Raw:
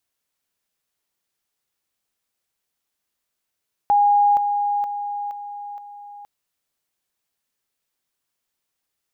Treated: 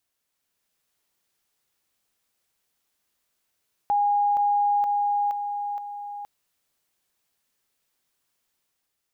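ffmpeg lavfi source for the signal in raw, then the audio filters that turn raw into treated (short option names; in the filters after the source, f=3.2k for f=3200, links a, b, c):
-f lavfi -i "aevalsrc='pow(10,(-12.5-6*floor(t/0.47))/20)*sin(2*PI*819*t)':d=2.35:s=44100"
-af "alimiter=limit=-22.5dB:level=0:latency=1,dynaudnorm=f=130:g=9:m=4dB"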